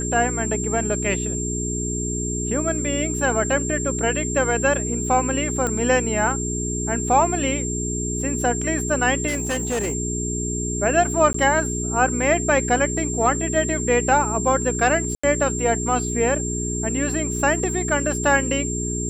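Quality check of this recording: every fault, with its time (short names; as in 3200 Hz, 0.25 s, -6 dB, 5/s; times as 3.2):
hum 60 Hz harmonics 7 -27 dBFS
tone 7400 Hz -27 dBFS
5.67 pop -12 dBFS
9.27–9.95 clipped -20 dBFS
11.33–11.34 gap 14 ms
15.15–15.23 gap 85 ms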